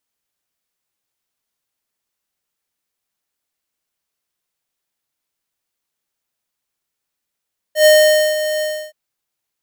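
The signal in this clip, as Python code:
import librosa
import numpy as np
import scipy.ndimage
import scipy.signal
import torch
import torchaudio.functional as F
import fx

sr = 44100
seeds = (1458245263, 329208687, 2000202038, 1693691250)

y = fx.adsr_tone(sr, wave='square', hz=614.0, attack_ms=105.0, decay_ms=498.0, sustain_db=-11.5, held_s=0.87, release_ms=303.0, level_db=-8.0)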